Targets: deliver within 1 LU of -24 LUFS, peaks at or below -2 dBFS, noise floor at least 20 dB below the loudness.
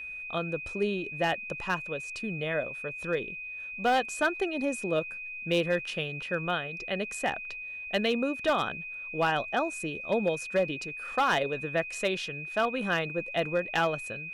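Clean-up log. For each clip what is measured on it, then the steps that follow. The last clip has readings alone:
clipped samples 0.4%; clipping level -19.0 dBFS; steady tone 2.5 kHz; tone level -37 dBFS; loudness -30.5 LUFS; peak level -19.0 dBFS; loudness target -24.0 LUFS
-> clip repair -19 dBFS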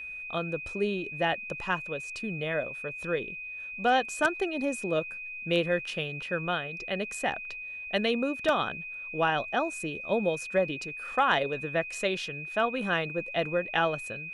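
clipped samples 0.0%; steady tone 2.5 kHz; tone level -37 dBFS
-> band-stop 2.5 kHz, Q 30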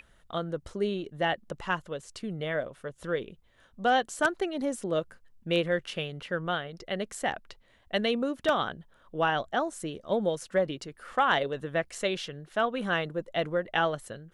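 steady tone not found; loudness -30.5 LUFS; peak level -10.0 dBFS; loudness target -24.0 LUFS
-> trim +6.5 dB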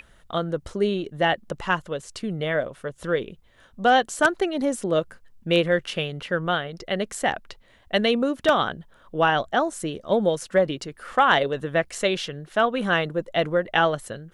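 loudness -24.0 LUFS; peak level -3.5 dBFS; noise floor -55 dBFS

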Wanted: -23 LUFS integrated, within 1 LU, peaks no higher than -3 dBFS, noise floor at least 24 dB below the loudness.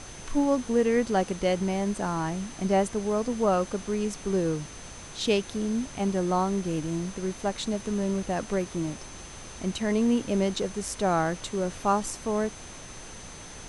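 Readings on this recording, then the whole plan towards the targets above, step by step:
steady tone 6.2 kHz; tone level -47 dBFS; noise floor -43 dBFS; noise floor target -52 dBFS; loudness -28.0 LUFS; peak level -11.5 dBFS; loudness target -23.0 LUFS
-> band-stop 6.2 kHz, Q 30; noise print and reduce 9 dB; trim +5 dB

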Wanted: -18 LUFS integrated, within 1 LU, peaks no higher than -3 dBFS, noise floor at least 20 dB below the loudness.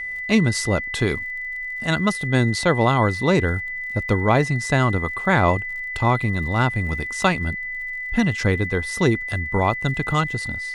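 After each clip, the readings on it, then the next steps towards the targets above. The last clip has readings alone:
tick rate 48 per s; steady tone 2 kHz; tone level -27 dBFS; loudness -21.5 LUFS; peak level -3.5 dBFS; loudness target -18.0 LUFS
-> de-click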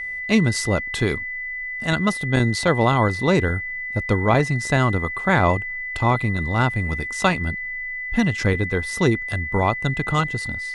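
tick rate 0.093 per s; steady tone 2 kHz; tone level -27 dBFS
-> band-stop 2 kHz, Q 30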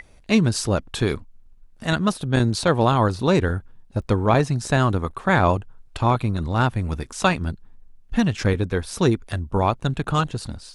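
steady tone not found; loudness -22.0 LUFS; peak level -4.0 dBFS; loudness target -18.0 LUFS
-> trim +4 dB; peak limiter -3 dBFS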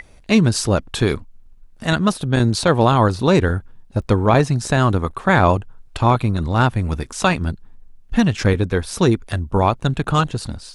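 loudness -18.5 LUFS; peak level -3.0 dBFS; noise floor -46 dBFS

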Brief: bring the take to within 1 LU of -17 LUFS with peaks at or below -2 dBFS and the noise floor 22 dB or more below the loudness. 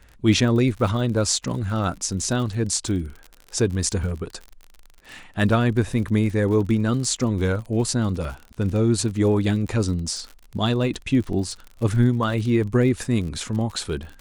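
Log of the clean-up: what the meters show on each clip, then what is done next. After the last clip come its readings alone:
tick rate 46 per s; loudness -23.0 LUFS; peak level -5.5 dBFS; loudness target -17.0 LUFS
-> de-click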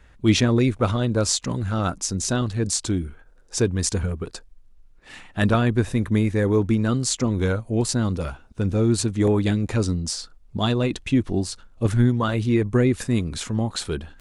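tick rate 0.21 per s; loudness -23.0 LUFS; peak level -5.5 dBFS; loudness target -17.0 LUFS
-> trim +6 dB; peak limiter -2 dBFS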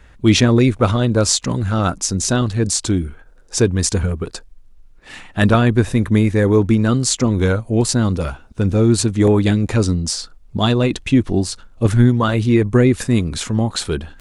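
loudness -17.0 LUFS; peak level -2.0 dBFS; noise floor -45 dBFS

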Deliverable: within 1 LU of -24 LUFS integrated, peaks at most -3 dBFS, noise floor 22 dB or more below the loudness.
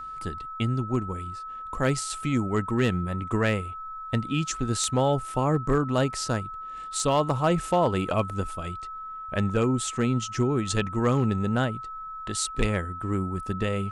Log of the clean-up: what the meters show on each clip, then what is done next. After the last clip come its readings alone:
clipped samples 0.2%; clipping level -14.5 dBFS; steady tone 1.3 kHz; tone level -35 dBFS; loudness -27.0 LUFS; peak level -14.5 dBFS; loudness target -24.0 LUFS
-> clip repair -14.5 dBFS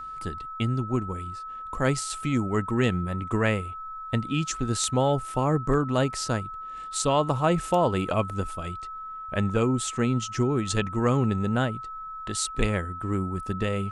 clipped samples 0.0%; steady tone 1.3 kHz; tone level -35 dBFS
-> band-stop 1.3 kHz, Q 30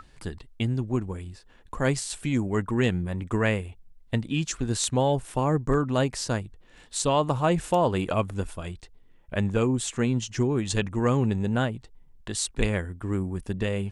steady tone not found; loudness -27.0 LUFS; peak level -9.5 dBFS; loudness target -24.0 LUFS
-> trim +3 dB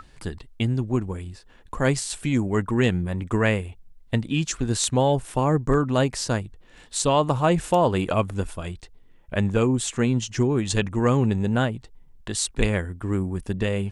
loudness -24.0 LUFS; peak level -6.5 dBFS; noise floor -51 dBFS

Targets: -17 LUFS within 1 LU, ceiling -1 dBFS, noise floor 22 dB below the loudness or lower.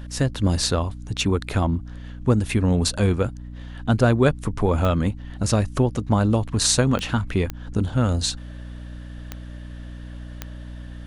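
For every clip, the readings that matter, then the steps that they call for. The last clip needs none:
clicks found 5; hum 60 Hz; highest harmonic 300 Hz; hum level -35 dBFS; loudness -22.5 LUFS; peak level -2.0 dBFS; loudness target -17.0 LUFS
-> de-click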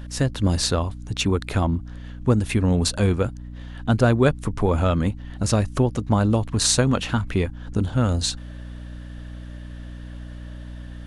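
clicks found 0; hum 60 Hz; highest harmonic 300 Hz; hum level -35 dBFS
-> de-hum 60 Hz, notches 5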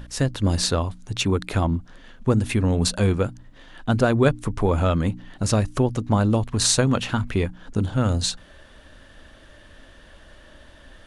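hum not found; loudness -22.5 LUFS; peak level -2.0 dBFS; loudness target -17.0 LUFS
-> trim +5.5 dB; peak limiter -1 dBFS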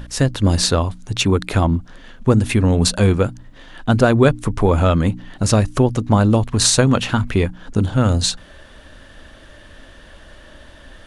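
loudness -17.5 LUFS; peak level -1.0 dBFS; noise floor -44 dBFS

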